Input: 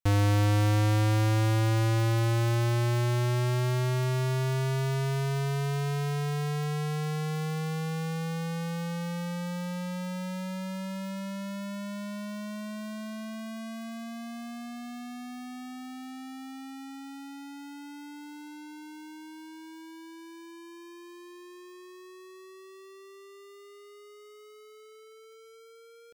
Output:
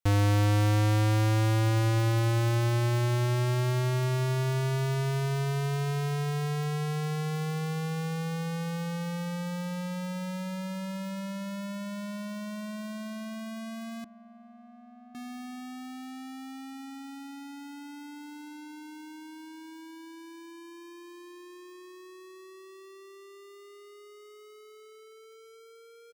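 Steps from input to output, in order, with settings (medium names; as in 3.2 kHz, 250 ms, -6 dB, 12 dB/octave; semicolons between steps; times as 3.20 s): 14.04–15.15 s: two resonant band-passes 520 Hz, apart 1.3 oct; echo from a far wall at 270 m, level -21 dB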